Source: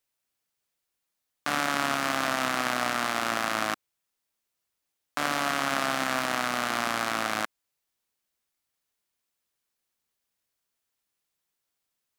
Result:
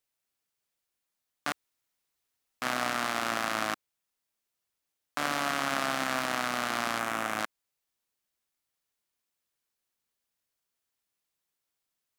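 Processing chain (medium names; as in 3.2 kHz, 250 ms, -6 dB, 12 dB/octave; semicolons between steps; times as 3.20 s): 1.52–2.62 s: room tone; 6.99–7.39 s: peaking EQ 4.4 kHz -8.5 dB 0.7 oct; trim -2.5 dB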